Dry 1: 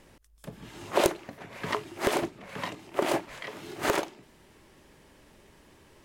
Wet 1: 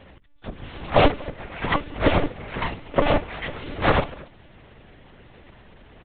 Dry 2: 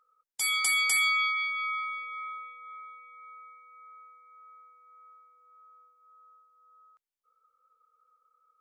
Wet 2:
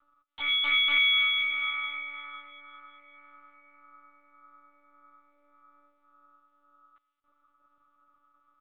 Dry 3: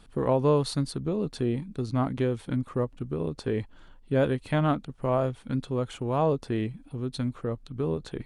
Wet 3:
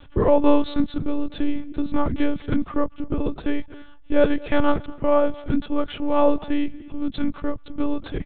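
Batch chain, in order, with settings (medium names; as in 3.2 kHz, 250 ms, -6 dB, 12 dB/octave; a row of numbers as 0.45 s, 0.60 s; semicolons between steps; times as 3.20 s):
delay 230 ms -22 dB; monotone LPC vocoder at 8 kHz 290 Hz; normalise loudness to -24 LUFS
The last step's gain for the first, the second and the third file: +8.5 dB, +2.5 dB, +8.0 dB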